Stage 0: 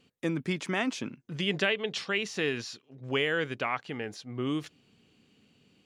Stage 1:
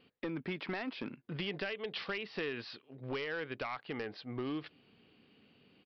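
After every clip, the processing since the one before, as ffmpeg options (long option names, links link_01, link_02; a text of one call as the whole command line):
ffmpeg -i in.wav -af "bass=frequency=250:gain=-6,treble=frequency=4000:gain=-10,acompressor=threshold=-36dB:ratio=6,aresample=11025,volume=33.5dB,asoftclip=hard,volume=-33.5dB,aresample=44100,volume=2dB" out.wav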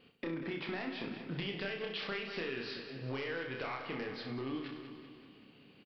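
ffmpeg -i in.wav -filter_complex "[0:a]asplit=2[link_01][link_02];[link_02]aecho=0:1:191|382|573|764|955|1146:0.251|0.143|0.0816|0.0465|0.0265|0.0151[link_03];[link_01][link_03]amix=inputs=2:normalize=0,acompressor=threshold=-39dB:ratio=6,asplit=2[link_04][link_05];[link_05]aecho=0:1:30|63|99.3|139.2|183.2:0.631|0.398|0.251|0.158|0.1[link_06];[link_04][link_06]amix=inputs=2:normalize=0,volume=1.5dB" out.wav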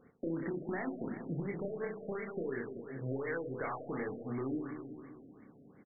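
ffmpeg -i in.wav -af "afftfilt=real='re*lt(b*sr/1024,700*pow(2300/700,0.5+0.5*sin(2*PI*2.8*pts/sr)))':imag='im*lt(b*sr/1024,700*pow(2300/700,0.5+0.5*sin(2*PI*2.8*pts/sr)))':win_size=1024:overlap=0.75,volume=2.5dB" out.wav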